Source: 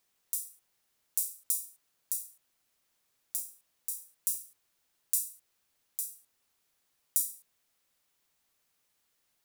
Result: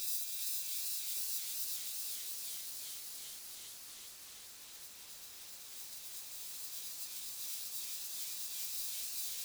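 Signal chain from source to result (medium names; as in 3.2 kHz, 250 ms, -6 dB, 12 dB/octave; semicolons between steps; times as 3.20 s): Paulstretch 14×, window 1.00 s, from 5.34 s; spectral gate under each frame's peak -25 dB weak; modulated delay 389 ms, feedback 80%, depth 129 cents, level -3 dB; trim +16.5 dB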